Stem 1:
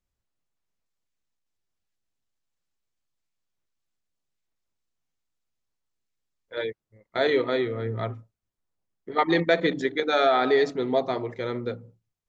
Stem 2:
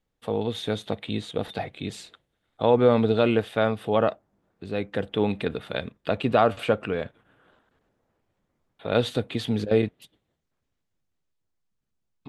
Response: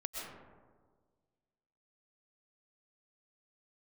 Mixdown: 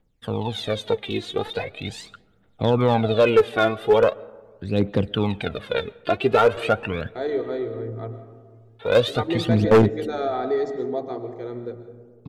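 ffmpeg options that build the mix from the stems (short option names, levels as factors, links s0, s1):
-filter_complex "[0:a]equalizer=f=2700:w=0.56:g=-13.5,aecho=1:1:2.6:0.3,volume=0.562,asplit=2[s0][s1];[s1]volume=0.562[s2];[1:a]highshelf=f=7400:g=-8,aphaser=in_gain=1:out_gain=1:delay=2.9:decay=0.75:speed=0.41:type=triangular,volume=1.19,asplit=2[s3][s4];[s4]volume=0.0841[s5];[2:a]atrim=start_sample=2205[s6];[s2][s5]amix=inputs=2:normalize=0[s7];[s7][s6]afir=irnorm=-1:irlink=0[s8];[s0][s3][s8]amix=inputs=3:normalize=0,asoftclip=type=hard:threshold=0.335"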